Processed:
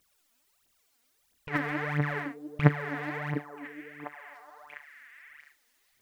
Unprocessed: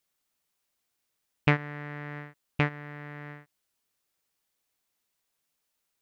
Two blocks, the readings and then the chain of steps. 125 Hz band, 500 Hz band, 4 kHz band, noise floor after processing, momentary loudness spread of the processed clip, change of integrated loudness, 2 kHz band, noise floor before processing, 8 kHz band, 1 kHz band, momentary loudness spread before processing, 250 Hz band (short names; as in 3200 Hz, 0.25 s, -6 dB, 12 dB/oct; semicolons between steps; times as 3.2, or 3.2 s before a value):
+3.0 dB, +2.5 dB, -4.5 dB, -72 dBFS, 24 LU, +0.5 dB, +1.5 dB, -81 dBFS, n/a, +2.0 dB, 16 LU, +3.5 dB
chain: negative-ratio compressor -28 dBFS, ratio -0.5; phaser 1.5 Hz, delay 4.5 ms, feedback 77%; on a send: delay with a stepping band-pass 0.7 s, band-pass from 330 Hz, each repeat 1.4 oct, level -5.5 dB; on the sum: gain +1 dB